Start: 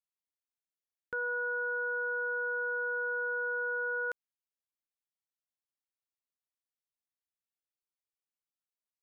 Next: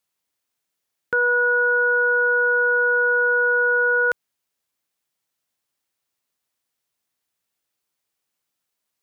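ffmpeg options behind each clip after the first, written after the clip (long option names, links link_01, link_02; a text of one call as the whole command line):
ffmpeg -i in.wav -af "highpass=64,acontrast=67,volume=8.5dB" out.wav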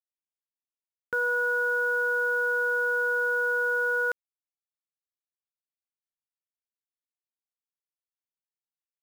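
ffmpeg -i in.wav -af "acrusher=bits=6:mix=0:aa=0.000001,volume=-7.5dB" out.wav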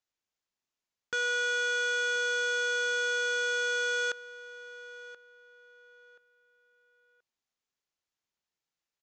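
ffmpeg -i in.wav -filter_complex "[0:a]aresample=16000,asoftclip=type=tanh:threshold=-36.5dB,aresample=44100,asplit=2[link_01][link_02];[link_02]adelay=1029,lowpass=frequency=2700:poles=1,volume=-15dB,asplit=2[link_03][link_04];[link_04]adelay=1029,lowpass=frequency=2700:poles=1,volume=0.3,asplit=2[link_05][link_06];[link_06]adelay=1029,lowpass=frequency=2700:poles=1,volume=0.3[link_07];[link_01][link_03][link_05][link_07]amix=inputs=4:normalize=0,volume=8dB" out.wav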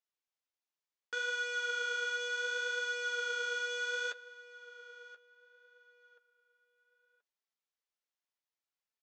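ffmpeg -i in.wav -af "flanger=delay=4.5:depth=9.6:regen=35:speed=0.67:shape=sinusoidal,highpass=400,lowpass=7000,volume=-2dB" out.wav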